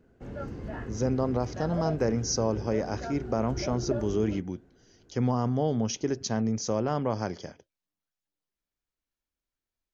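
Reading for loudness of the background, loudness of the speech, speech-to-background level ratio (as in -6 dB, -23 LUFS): -38.0 LUFS, -29.5 LUFS, 8.5 dB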